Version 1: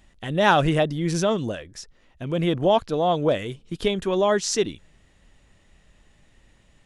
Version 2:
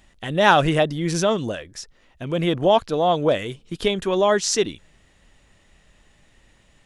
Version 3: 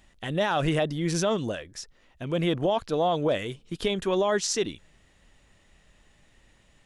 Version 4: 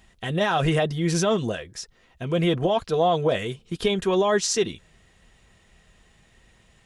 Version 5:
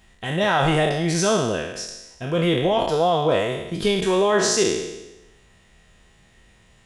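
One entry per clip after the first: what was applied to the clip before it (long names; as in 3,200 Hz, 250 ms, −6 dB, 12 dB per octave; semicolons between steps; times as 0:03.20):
low-shelf EQ 380 Hz −4 dB; level +3.5 dB
brickwall limiter −12.5 dBFS, peak gain reduction 11.5 dB; level −3.5 dB
notch comb filter 290 Hz; level +4.5 dB
peak hold with a decay on every bin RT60 1.02 s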